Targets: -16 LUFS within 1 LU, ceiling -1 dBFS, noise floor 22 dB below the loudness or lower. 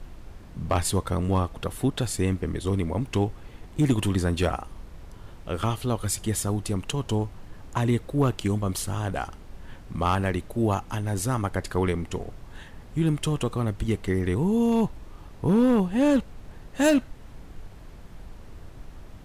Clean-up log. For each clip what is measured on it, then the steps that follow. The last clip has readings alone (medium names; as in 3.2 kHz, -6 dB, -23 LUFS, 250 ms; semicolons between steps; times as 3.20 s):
clipped samples 0.4%; clipping level -14.5 dBFS; noise floor -45 dBFS; noise floor target -48 dBFS; loudness -26.0 LUFS; peak level -14.5 dBFS; loudness target -16.0 LUFS
-> clip repair -14.5 dBFS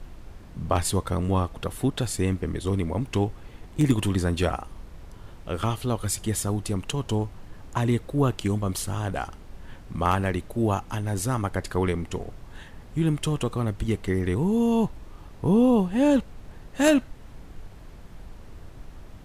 clipped samples 0.0%; noise floor -45 dBFS; noise floor target -48 dBFS
-> noise print and reduce 6 dB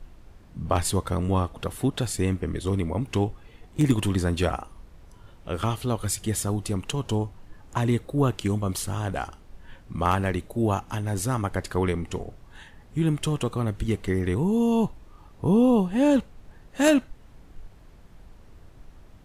noise floor -51 dBFS; loudness -26.0 LUFS; peak level -7.0 dBFS; loudness target -16.0 LUFS
-> trim +10 dB; peak limiter -1 dBFS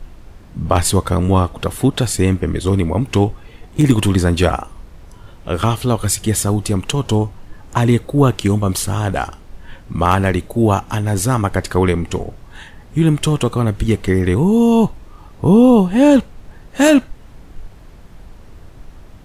loudness -16.0 LUFS; peak level -1.0 dBFS; noise floor -41 dBFS